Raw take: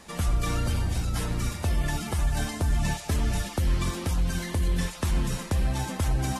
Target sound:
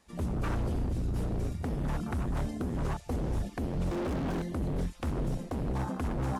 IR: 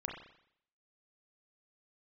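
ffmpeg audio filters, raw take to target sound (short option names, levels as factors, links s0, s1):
-filter_complex "[0:a]afwtdn=0.0282,aeval=exprs='0.0501*(abs(mod(val(0)/0.0501+3,4)-2)-1)':c=same,asettb=1/sr,asplit=3[s0][s1][s2];[s0]atrim=end=3.914[s3];[s1]atrim=start=3.91:end=4.42,asetpts=PTS-STARTPTS,afade=t=in:d=0.004:c=qsin,afade=t=out:st=0.506:d=0.004:c=qsin,asplit=2[s4][s5];[s5]highpass=f=720:p=1,volume=70.8,asoftclip=type=tanh:threshold=0.0501[s6];[s4][s6]amix=inputs=2:normalize=0,lowpass=f=1200:p=1,volume=0.501[s7];[s2]atrim=start=4.416[s8];[s3][s7]acrossfade=d=0.004:c1=hsin:c2=qsin[s9];[s9][s8]acrossfade=d=0.004:c1=qsin:c2=hsin"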